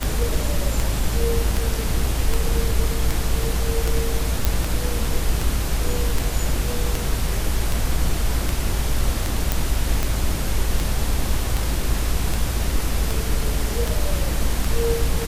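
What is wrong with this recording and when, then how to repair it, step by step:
tick 78 rpm
4.45 pop
9.52 pop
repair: de-click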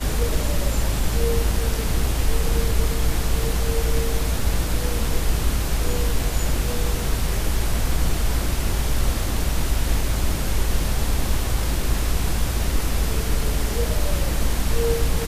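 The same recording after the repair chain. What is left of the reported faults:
none

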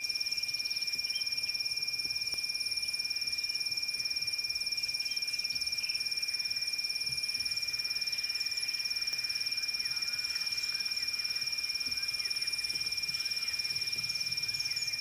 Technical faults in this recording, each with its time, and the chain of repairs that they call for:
tone 2400 Hz -39 dBFS
2.34 pop -25 dBFS
9.13 pop -23 dBFS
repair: de-click; notch 2400 Hz, Q 30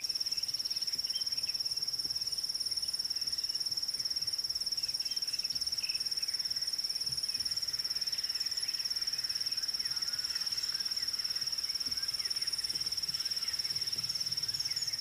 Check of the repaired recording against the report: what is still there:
2.34 pop

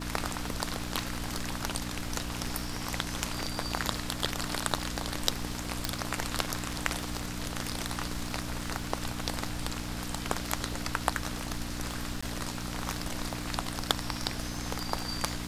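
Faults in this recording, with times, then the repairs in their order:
crackle 58/s -39 dBFS
hum 60 Hz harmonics 5 -39 dBFS
5.85 pop
12.21–12.22 gap 15 ms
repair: de-click; de-hum 60 Hz, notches 5; interpolate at 12.21, 15 ms

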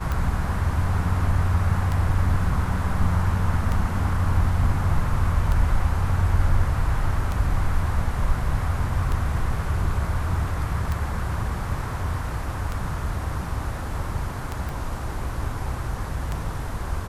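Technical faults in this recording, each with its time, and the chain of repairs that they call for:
tick 33 1/3 rpm -14 dBFS
14.69 pop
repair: de-click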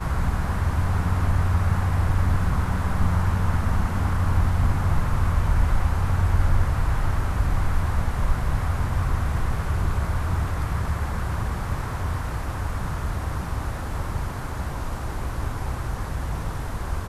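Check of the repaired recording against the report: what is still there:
none

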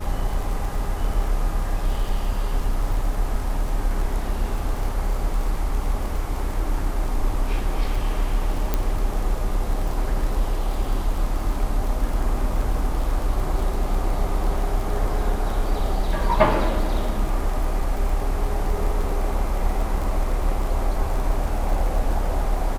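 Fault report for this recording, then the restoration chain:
crackle 35/s -28 dBFS
8.74 pop -8 dBFS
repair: de-click

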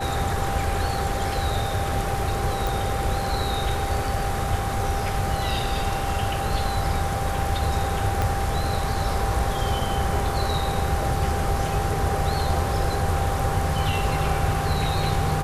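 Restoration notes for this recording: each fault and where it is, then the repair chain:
tone 790 Hz -29 dBFS
2.67 pop
8.22 pop -10 dBFS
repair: de-click; notch 790 Hz, Q 30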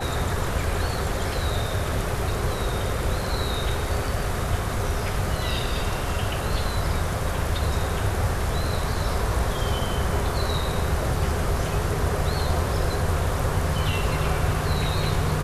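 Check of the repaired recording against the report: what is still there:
8.22 pop

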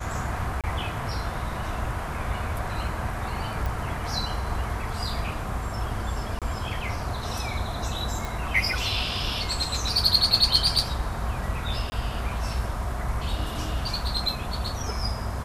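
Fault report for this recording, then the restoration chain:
0.61–0.64 gap 27 ms
3.66 pop
6.39–6.42 gap 27 ms
8.25 pop
11.9–11.92 gap 20 ms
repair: de-click; interpolate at 0.61, 27 ms; interpolate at 6.39, 27 ms; interpolate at 11.9, 20 ms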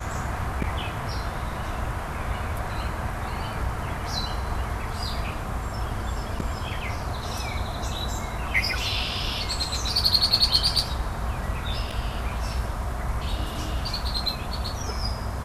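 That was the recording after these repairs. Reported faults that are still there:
none

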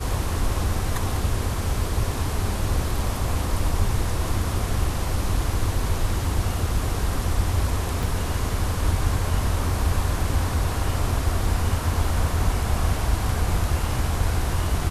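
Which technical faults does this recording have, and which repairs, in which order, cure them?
8.03 gap 3.5 ms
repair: interpolate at 8.03, 3.5 ms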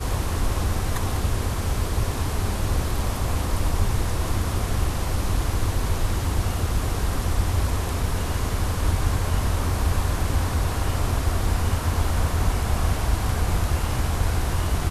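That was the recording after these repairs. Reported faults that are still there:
none

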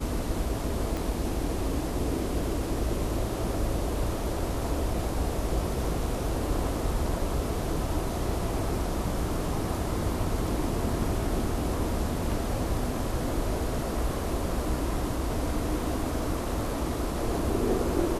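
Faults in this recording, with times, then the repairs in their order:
0.97 pop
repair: de-click

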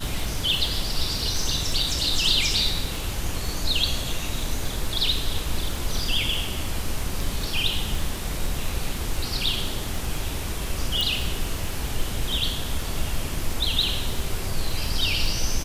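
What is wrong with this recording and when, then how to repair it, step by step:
crackle 29/s -28 dBFS
11.01 pop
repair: de-click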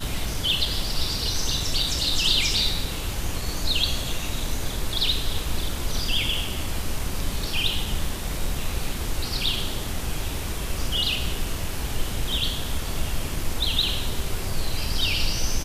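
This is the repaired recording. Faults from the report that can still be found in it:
none

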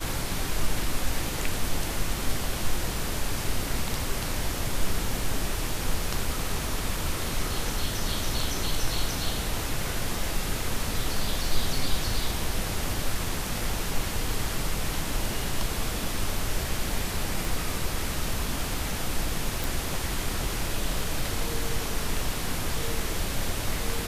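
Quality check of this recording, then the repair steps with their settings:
17.45 pop
19.64 pop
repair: de-click

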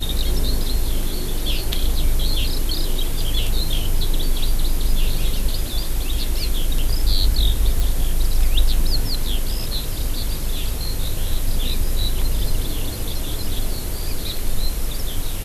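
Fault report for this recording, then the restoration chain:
7.8 pop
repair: de-click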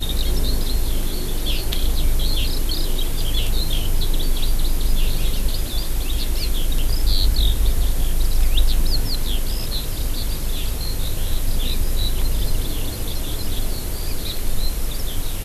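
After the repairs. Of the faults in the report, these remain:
none

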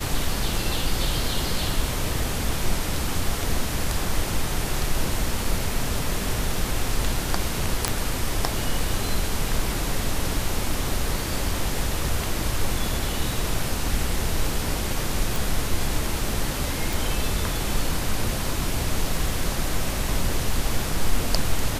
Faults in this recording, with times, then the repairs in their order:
7.88 pop
15.36 pop
16.93 pop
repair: de-click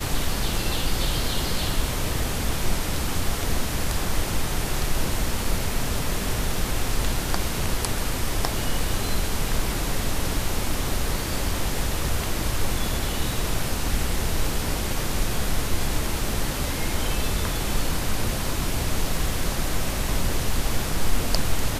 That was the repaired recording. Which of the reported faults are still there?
none

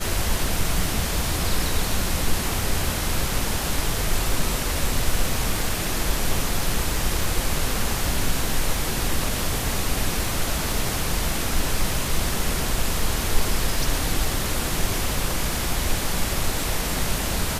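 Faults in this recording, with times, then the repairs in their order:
crackle 29/s -29 dBFS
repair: de-click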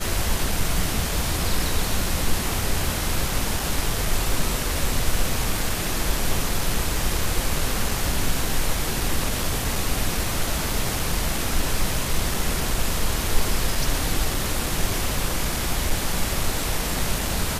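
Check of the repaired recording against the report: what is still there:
none

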